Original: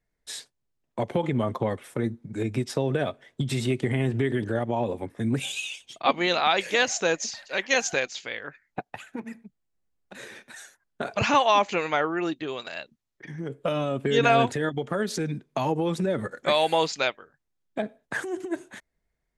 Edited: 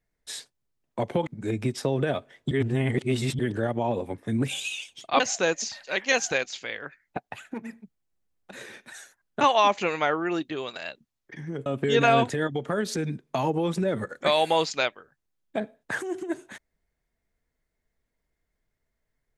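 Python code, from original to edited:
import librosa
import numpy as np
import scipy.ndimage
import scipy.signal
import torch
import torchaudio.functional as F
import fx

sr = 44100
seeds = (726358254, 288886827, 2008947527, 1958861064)

y = fx.edit(x, sr, fx.cut(start_s=1.27, length_s=0.92),
    fx.reverse_span(start_s=3.43, length_s=0.88),
    fx.cut(start_s=6.12, length_s=0.7),
    fx.cut(start_s=11.03, length_s=0.29),
    fx.cut(start_s=13.57, length_s=0.31), tone=tone)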